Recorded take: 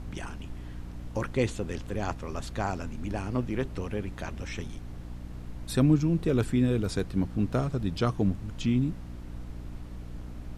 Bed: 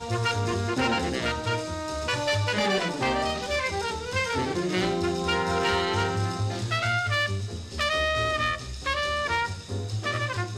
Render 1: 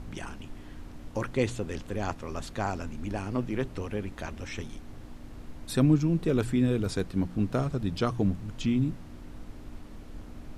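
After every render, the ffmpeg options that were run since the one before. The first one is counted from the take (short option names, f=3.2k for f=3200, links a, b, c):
-af "bandreject=f=60:t=h:w=4,bandreject=f=120:t=h:w=4,bandreject=f=180:t=h:w=4"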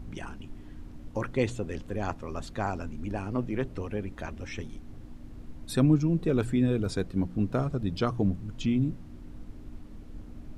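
-af "afftdn=nr=7:nf=-45"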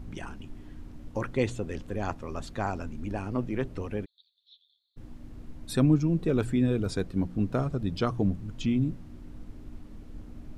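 -filter_complex "[0:a]asplit=3[a][b][c];[a]afade=t=out:st=4.04:d=0.02[d];[b]asuperpass=centerf=3900:order=8:qfactor=4,afade=t=in:st=4.04:d=0.02,afade=t=out:st=4.96:d=0.02[e];[c]afade=t=in:st=4.96:d=0.02[f];[d][e][f]amix=inputs=3:normalize=0"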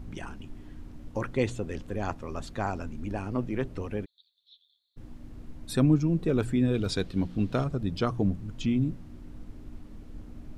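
-filter_complex "[0:a]asettb=1/sr,asplit=3[a][b][c];[a]atrim=end=6.744[d];[b]atrim=start=6.74:end=7.64,asetpts=PTS-STARTPTS,afade=t=in:d=0.004:c=qsin,afade=t=out:st=0.896:d=0.004:c=qsin,equalizer=f=3.6k:w=1:g=9.5[e];[c]atrim=start=7.636[f];[d][e]acrossfade=d=0.004:c1=hsin:c2=qsin[g];[g][f]acrossfade=d=0.004:c1=qsin:c2=hsin"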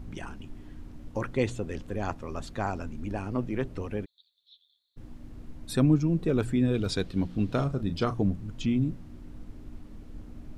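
-filter_complex "[0:a]asettb=1/sr,asplit=3[a][b][c];[a]atrim=end=7.454[d];[b]atrim=start=7.45:end=8.23,asetpts=PTS-STARTPTS,afade=t=in:d=0.004:c=qsin,afade=t=out:st=0.776:d=0.004:c=qsin,asplit=2[e][f];[f]adelay=36,volume=-11dB[g];[e][g]amix=inputs=2:normalize=0,atrim=end_sample=34398[h];[c]atrim=start=8.226[i];[d][h]acrossfade=d=0.004:c1=hsin:c2=qsin[j];[j][i]acrossfade=d=0.004:c1=qsin:c2=hsin"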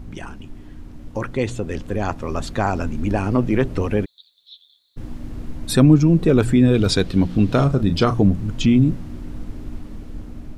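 -filter_complex "[0:a]asplit=2[a][b];[b]alimiter=limit=-22.5dB:level=0:latency=1:release=94,volume=-1dB[c];[a][c]amix=inputs=2:normalize=0,dynaudnorm=f=810:g=5:m=9.5dB"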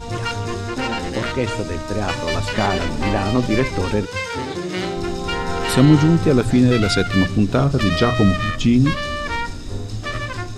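-filter_complex "[1:a]volume=1.5dB[a];[0:a][a]amix=inputs=2:normalize=0"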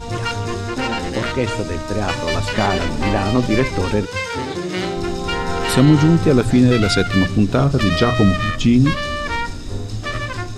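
-af "volume=1.5dB,alimiter=limit=-3dB:level=0:latency=1"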